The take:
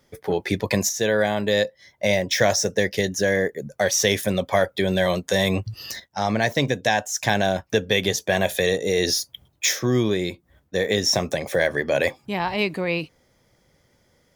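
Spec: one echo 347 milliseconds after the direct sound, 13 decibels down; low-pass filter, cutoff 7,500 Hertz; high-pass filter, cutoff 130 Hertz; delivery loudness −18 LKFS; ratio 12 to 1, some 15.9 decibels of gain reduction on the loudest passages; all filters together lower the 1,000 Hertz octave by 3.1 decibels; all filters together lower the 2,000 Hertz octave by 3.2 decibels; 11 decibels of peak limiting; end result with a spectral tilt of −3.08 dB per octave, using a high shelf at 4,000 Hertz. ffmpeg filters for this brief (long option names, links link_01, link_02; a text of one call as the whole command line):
ffmpeg -i in.wav -af "highpass=130,lowpass=7500,equalizer=frequency=1000:width_type=o:gain=-4.5,equalizer=frequency=2000:width_type=o:gain=-4,highshelf=frequency=4000:gain=6.5,acompressor=threshold=-32dB:ratio=12,alimiter=level_in=1.5dB:limit=-24dB:level=0:latency=1,volume=-1.5dB,aecho=1:1:347:0.224,volume=19.5dB" out.wav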